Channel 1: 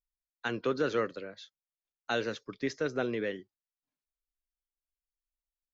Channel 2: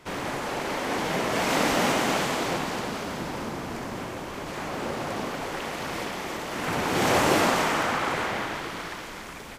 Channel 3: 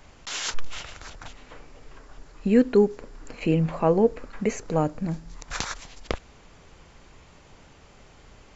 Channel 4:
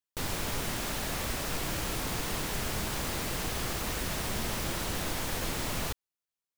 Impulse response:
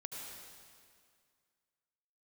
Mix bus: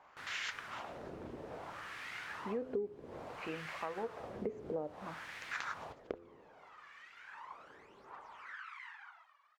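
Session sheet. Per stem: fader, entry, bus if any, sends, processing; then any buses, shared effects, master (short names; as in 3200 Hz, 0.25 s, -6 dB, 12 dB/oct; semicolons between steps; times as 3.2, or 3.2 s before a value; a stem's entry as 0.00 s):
off
-17.5 dB, 0.65 s, no send, steep high-pass 910 Hz 48 dB/oct; reverb removal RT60 0.59 s; phaser 0.4 Hz, delay 1.8 ms, feedback 68%
-0.5 dB, 0.00 s, no send, de-hum 85.96 Hz, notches 6
-7.0 dB, 0.00 s, send -7.5 dB, bell 89 Hz +10 dB 2.1 oct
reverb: on, RT60 2.1 s, pre-delay 67 ms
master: wah 0.6 Hz 370–2000 Hz, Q 2.1; compressor 6:1, threshold -36 dBFS, peak gain reduction 19 dB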